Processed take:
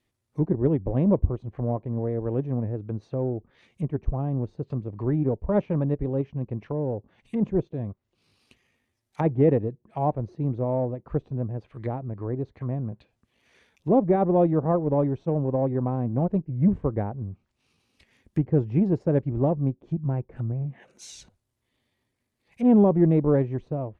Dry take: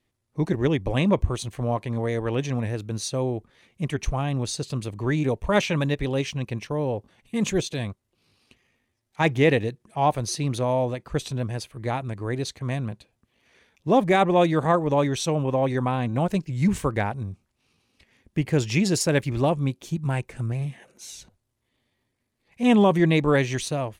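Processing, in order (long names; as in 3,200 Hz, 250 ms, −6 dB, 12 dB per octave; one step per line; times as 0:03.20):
harmonic generator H 5 −35 dB, 7 −26 dB, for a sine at −8.5 dBFS
treble cut that deepens with the level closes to 580 Hz, closed at −27.5 dBFS
level +1 dB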